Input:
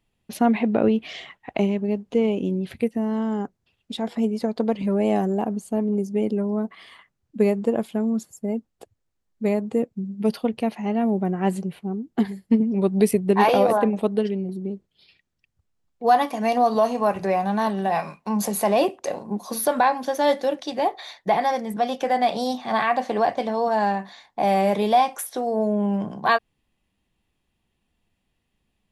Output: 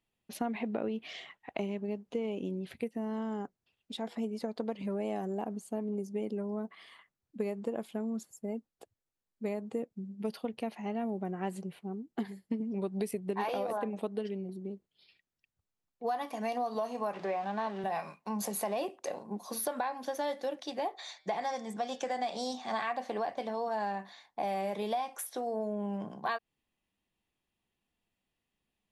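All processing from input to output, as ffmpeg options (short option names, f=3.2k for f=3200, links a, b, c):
-filter_complex "[0:a]asettb=1/sr,asplit=3[a][b][c];[a]atrim=end=17.134[d];[b]atrim=start=17.13:end=17.84,asetpts=PTS-STARTPTS,afade=t=in:d=0.004:c=qsin,afade=t=out:st=0.706:d=0.004:c=qsin,aeval=exprs='val(0)+0.5*0.0251*sgn(val(0))':c=same,acrusher=bits=7:mix=0:aa=0.5,highpass=220,lowpass=3.8k[e];[c]atrim=start=17.836[f];[d][e]acrossfade=d=0.004:c1=hsin:c2=qsin[g];[g][f]acrossfade=d=0.004:c1=qsin:c2=hsin,asettb=1/sr,asplit=3[h][i][j];[h]atrim=end=20.964[k];[i]atrim=start=20.96:end=22.93,asetpts=PTS-STARTPTS,afade=t=in:d=0.004:c=qsin,afade=t=out:st=1.966:d=0.004:c=qsin,lowpass=f=7.3k:t=q:w=3.5,bandreject=f=153.6:t=h:w=4,bandreject=f=307.2:t=h:w=4,bandreject=f=460.8:t=h:w=4,bandreject=f=614.4:t=h:w=4,bandreject=f=768:t=h:w=4,bandreject=f=921.6:t=h:w=4,bandreject=f=1.0752k:t=h:w=4,bandreject=f=1.2288k:t=h:w=4,bandreject=f=1.3824k:t=h:w=4,bandreject=f=1.536k:t=h:w=4,bandreject=f=1.6896k:t=h:w=4,bandreject=f=1.8432k:t=h:w=4,bandreject=f=1.9968k:t=h:w=4,bandreject=f=2.1504k:t=h:w=4,bandreject=f=2.304k:t=h:w=4,bandreject=f=2.4576k:t=h:w=4,bandreject=f=2.6112k:t=h:w=4,bandreject=f=2.7648k:t=h:w=4,bandreject=f=2.9184k:t=h:w=4,bandreject=f=3.072k:t=h:w=4,bandreject=f=3.2256k:t=h:w=4,bandreject=f=3.3792k:t=h:w=4,bandreject=f=3.5328k:t=h:w=4,bandreject=f=3.6864k:t=h:w=4,bandreject=f=3.84k:t=h:w=4,bandreject=f=3.9936k:t=h:w=4,bandreject=f=4.1472k:t=h:w=4,bandreject=f=4.3008k:t=h:w=4,bandreject=f=4.4544k:t=h:w=4,bandreject=f=4.608k:t=h:w=4,bandreject=f=4.7616k:t=h:w=4,bandreject=f=4.9152k:t=h:w=4,bandreject=f=5.0688k:t=h:w=4,bandreject=f=5.2224k:t=h:w=4,bandreject=f=5.376k:t=h:w=4,bandreject=f=5.5296k:t=h:w=4[l];[j]atrim=start=22.926[m];[k][l]acrossfade=d=0.004:c1=hsin:c2=qsin[n];[n][m]acrossfade=d=0.004:c1=qsin:c2=hsin,lowshelf=f=160:g=-9,acompressor=threshold=-22dB:ratio=6,volume=-8dB"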